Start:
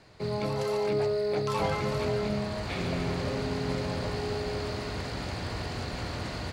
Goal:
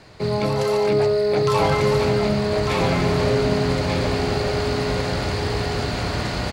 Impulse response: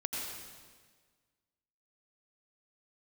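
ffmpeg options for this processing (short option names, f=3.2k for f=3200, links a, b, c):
-af "aecho=1:1:1197:0.596,volume=9dB"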